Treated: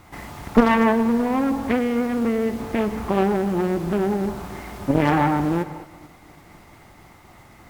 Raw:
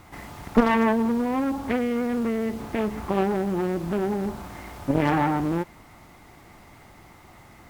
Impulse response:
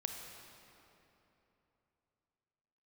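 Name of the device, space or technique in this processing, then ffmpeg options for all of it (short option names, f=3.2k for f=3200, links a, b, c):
keyed gated reverb: -filter_complex "[0:a]asplit=3[a][b][c];[1:a]atrim=start_sample=2205[d];[b][d]afir=irnorm=-1:irlink=0[e];[c]apad=whole_len=339395[f];[e][f]sidechaingate=range=-33dB:threshold=-47dB:ratio=16:detection=peak,volume=-5dB[g];[a][g]amix=inputs=2:normalize=0"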